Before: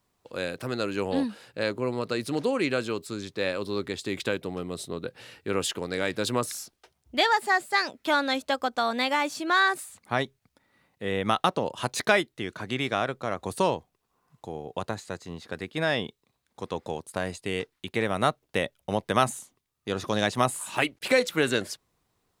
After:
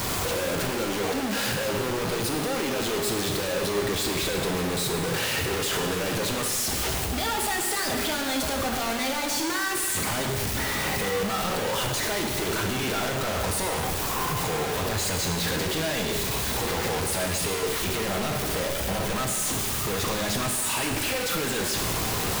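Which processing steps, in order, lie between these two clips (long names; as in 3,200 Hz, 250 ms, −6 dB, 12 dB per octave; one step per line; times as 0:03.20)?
sign of each sample alone
reverb whose tail is shaped and stops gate 490 ms falling, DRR 1.5 dB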